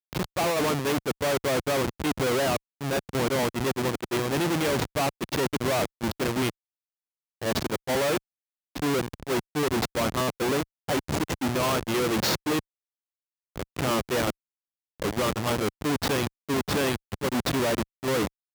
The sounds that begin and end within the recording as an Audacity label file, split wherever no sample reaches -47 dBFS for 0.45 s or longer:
7.420000	8.180000	sound
8.750000	12.600000	sound
13.560000	14.310000	sound